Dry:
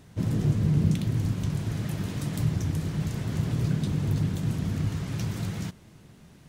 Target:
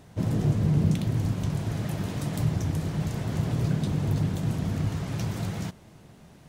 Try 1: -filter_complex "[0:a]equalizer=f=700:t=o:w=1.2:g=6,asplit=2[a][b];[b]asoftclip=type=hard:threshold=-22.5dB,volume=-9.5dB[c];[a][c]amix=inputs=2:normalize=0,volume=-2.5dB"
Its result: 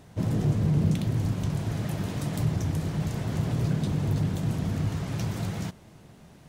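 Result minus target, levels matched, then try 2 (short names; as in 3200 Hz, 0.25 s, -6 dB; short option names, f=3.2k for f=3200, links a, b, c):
hard clip: distortion +15 dB
-filter_complex "[0:a]equalizer=f=700:t=o:w=1.2:g=6,asplit=2[a][b];[b]asoftclip=type=hard:threshold=-15.5dB,volume=-9.5dB[c];[a][c]amix=inputs=2:normalize=0,volume=-2.5dB"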